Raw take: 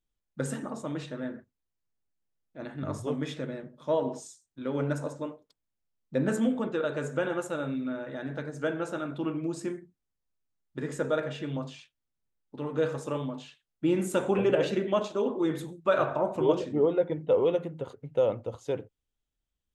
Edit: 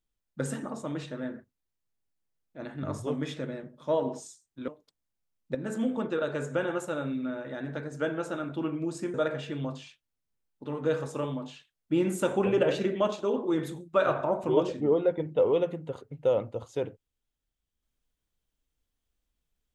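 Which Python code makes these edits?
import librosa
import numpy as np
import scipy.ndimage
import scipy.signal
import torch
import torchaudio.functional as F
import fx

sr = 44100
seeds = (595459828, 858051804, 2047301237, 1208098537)

y = fx.edit(x, sr, fx.cut(start_s=4.68, length_s=0.62),
    fx.fade_in_from(start_s=6.17, length_s=0.45, floor_db=-12.0),
    fx.cut(start_s=9.76, length_s=1.3), tone=tone)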